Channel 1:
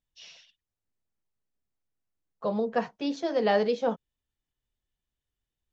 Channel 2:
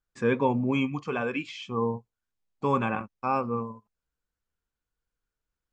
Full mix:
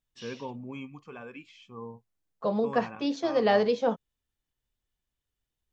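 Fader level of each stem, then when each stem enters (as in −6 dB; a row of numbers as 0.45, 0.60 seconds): +1.0, −14.0 decibels; 0.00, 0.00 seconds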